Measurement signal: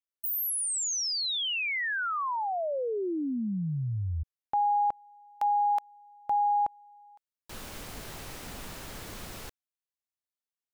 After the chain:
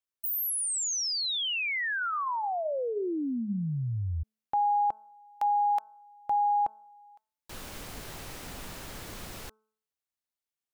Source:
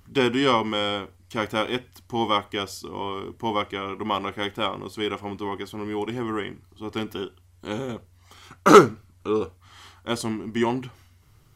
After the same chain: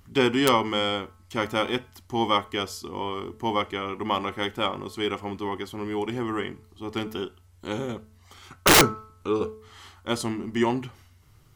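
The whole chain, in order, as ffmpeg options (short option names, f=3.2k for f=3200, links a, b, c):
-af "bandreject=f=217.4:t=h:w=4,bandreject=f=434.8:t=h:w=4,bandreject=f=652.2:t=h:w=4,bandreject=f=869.6:t=h:w=4,bandreject=f=1.087k:t=h:w=4,bandreject=f=1.3044k:t=h:w=4,bandreject=f=1.5218k:t=h:w=4,aeval=exprs='(mod(2.66*val(0)+1,2)-1)/2.66':c=same"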